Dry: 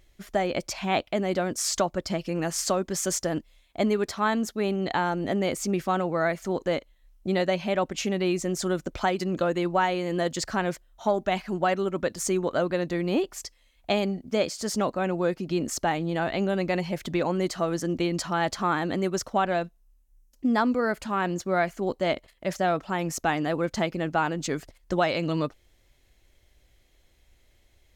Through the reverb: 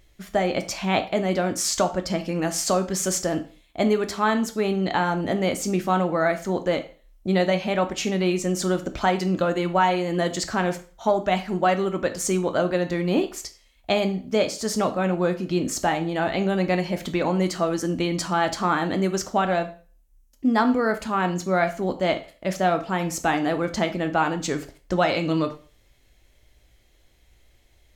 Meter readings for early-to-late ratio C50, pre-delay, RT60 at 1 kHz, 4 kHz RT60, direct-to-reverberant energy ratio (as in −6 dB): 13.5 dB, 5 ms, 0.40 s, 0.40 s, 7.0 dB